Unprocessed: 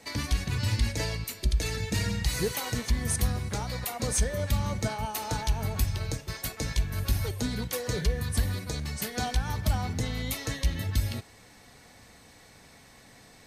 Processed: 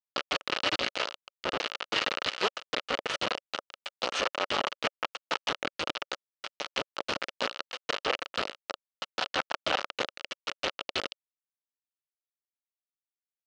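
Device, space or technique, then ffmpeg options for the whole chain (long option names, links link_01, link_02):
hand-held game console: -af "acrusher=bits=3:mix=0:aa=0.000001,highpass=410,equalizer=frequency=560:width_type=q:width=4:gain=6,equalizer=frequency=1300:width_type=q:width=4:gain=8,equalizer=frequency=2900:width_type=q:width=4:gain=8,lowpass=frequency=4800:width=0.5412,lowpass=frequency=4800:width=1.3066"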